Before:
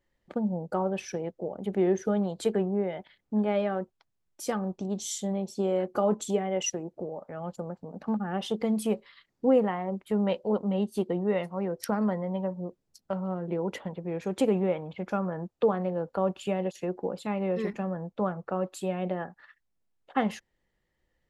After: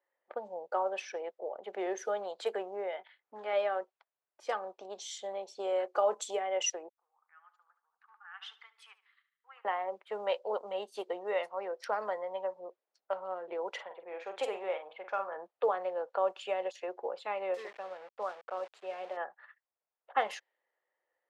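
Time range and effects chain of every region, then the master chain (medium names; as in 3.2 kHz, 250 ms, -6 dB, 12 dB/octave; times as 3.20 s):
2.96–3.53 s: peaking EQ 550 Hz -6.5 dB 0.98 oct + doubling 21 ms -8 dB + loudspeaker Doppler distortion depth 0.11 ms
6.89–9.65 s: inverse Chebyshev high-pass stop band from 640 Hz + feedback delay 73 ms, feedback 49%, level -11 dB + upward expansion, over -57 dBFS
13.69–15.36 s: bass shelf 430 Hz -8.5 dB + doubling 46 ms -8 dB
17.54–19.17 s: flange 1.2 Hz, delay 1.3 ms, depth 8.6 ms, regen +88% + small samples zeroed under -46 dBFS
whole clip: level-controlled noise filter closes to 1.6 kHz, open at -22 dBFS; high-pass 520 Hz 24 dB/octave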